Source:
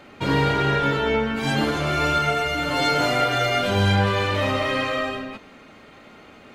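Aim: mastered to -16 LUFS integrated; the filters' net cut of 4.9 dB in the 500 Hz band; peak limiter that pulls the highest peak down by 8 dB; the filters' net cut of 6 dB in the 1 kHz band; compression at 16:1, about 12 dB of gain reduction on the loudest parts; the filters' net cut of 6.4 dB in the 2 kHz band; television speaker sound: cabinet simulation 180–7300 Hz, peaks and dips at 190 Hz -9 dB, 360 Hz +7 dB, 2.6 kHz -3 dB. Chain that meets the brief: peaking EQ 500 Hz -7 dB; peaking EQ 1 kHz -4.5 dB; peaking EQ 2 kHz -5.5 dB; compression 16:1, threshold -28 dBFS; peak limiter -28 dBFS; cabinet simulation 180–7300 Hz, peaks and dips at 190 Hz -9 dB, 360 Hz +7 dB, 2.6 kHz -3 dB; trim +21.5 dB

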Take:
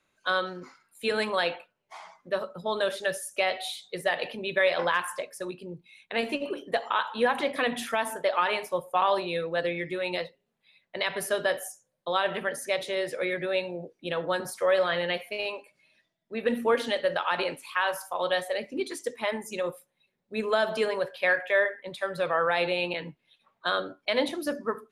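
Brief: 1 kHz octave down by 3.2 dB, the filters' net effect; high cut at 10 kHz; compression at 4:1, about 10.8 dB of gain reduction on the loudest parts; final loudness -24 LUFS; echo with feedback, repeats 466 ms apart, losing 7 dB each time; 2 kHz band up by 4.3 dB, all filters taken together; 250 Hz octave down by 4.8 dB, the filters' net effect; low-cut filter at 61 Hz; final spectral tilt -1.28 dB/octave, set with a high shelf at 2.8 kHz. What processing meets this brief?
high-pass 61 Hz; low-pass 10 kHz; peaking EQ 250 Hz -6.5 dB; peaking EQ 1 kHz -6.5 dB; peaking EQ 2 kHz +4 dB; treble shelf 2.8 kHz +9 dB; compression 4:1, threshold -30 dBFS; feedback delay 466 ms, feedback 45%, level -7 dB; trim +9 dB

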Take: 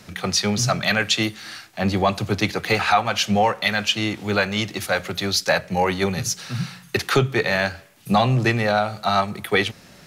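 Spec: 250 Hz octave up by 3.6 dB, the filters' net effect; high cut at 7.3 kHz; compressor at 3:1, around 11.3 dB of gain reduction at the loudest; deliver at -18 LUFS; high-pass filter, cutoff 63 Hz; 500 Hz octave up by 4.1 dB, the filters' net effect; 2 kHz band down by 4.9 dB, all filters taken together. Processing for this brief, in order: high-pass 63 Hz; low-pass 7.3 kHz; peaking EQ 250 Hz +4 dB; peaking EQ 500 Hz +4.5 dB; peaking EQ 2 kHz -6.5 dB; compression 3:1, threshold -26 dBFS; trim +10.5 dB

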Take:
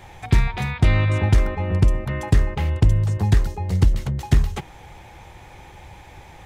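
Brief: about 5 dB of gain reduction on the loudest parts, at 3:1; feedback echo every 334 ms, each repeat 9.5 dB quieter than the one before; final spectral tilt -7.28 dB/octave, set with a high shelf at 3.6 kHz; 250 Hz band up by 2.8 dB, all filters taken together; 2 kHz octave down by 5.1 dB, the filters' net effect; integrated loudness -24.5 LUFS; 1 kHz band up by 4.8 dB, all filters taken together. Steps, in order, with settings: peaking EQ 250 Hz +4 dB; peaking EQ 1 kHz +7.5 dB; peaking EQ 2 kHz -5.5 dB; treble shelf 3.6 kHz -9 dB; compression 3:1, threshold -16 dBFS; feedback delay 334 ms, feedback 33%, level -9.5 dB; trim -1.5 dB

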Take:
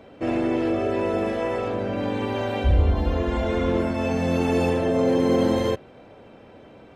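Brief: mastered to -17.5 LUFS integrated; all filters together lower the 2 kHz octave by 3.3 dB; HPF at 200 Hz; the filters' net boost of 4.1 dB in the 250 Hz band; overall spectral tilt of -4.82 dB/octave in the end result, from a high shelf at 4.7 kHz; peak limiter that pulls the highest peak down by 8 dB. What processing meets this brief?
high-pass 200 Hz; peaking EQ 250 Hz +6.5 dB; peaking EQ 2 kHz -3.5 dB; treble shelf 4.7 kHz -4.5 dB; trim +6.5 dB; peak limiter -8.5 dBFS

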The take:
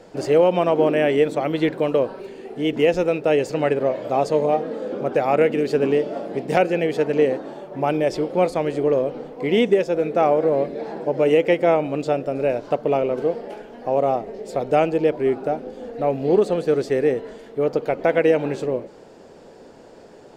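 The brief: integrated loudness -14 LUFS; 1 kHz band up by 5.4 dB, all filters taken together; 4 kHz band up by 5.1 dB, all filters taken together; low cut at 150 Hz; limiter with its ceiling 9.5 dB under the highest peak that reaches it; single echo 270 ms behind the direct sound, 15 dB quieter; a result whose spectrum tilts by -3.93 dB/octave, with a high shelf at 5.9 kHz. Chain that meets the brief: high-pass 150 Hz; peaking EQ 1 kHz +8 dB; peaking EQ 4 kHz +8 dB; treble shelf 5.9 kHz -3.5 dB; peak limiter -9.5 dBFS; delay 270 ms -15 dB; trim +7 dB

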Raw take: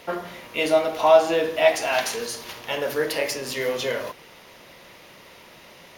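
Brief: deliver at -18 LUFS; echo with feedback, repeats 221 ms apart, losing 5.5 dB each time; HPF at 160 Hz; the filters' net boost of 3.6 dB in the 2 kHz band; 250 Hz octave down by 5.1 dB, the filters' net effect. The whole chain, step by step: high-pass 160 Hz; peaking EQ 250 Hz -7 dB; peaking EQ 2 kHz +4.5 dB; feedback delay 221 ms, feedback 53%, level -5.5 dB; trim +3.5 dB

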